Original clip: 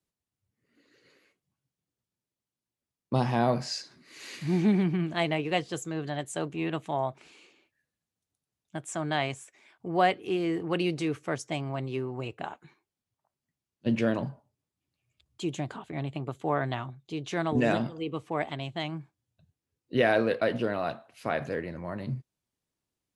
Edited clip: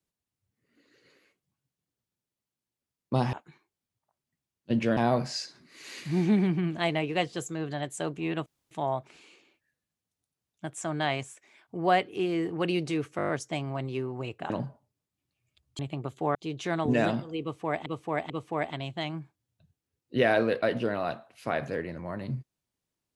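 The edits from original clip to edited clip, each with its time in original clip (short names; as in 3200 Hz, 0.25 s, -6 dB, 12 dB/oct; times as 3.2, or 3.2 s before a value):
6.82 insert room tone 0.25 s
11.28 stutter 0.02 s, 7 plays
12.49–14.13 move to 3.33
15.42–16.02 cut
16.58–17.02 cut
18.09–18.53 loop, 3 plays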